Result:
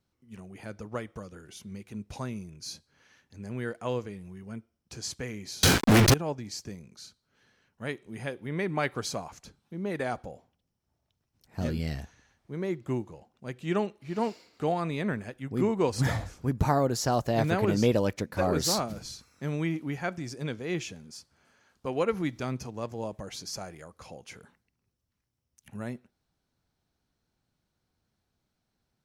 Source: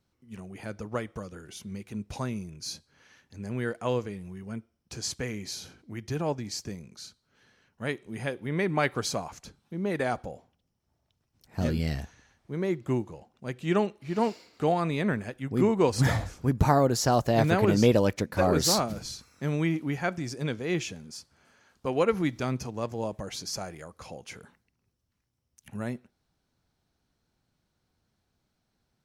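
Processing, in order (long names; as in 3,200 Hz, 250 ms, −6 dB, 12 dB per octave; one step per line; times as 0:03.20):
0:05.63–0:06.14: fuzz pedal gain 61 dB, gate −56 dBFS
level −3 dB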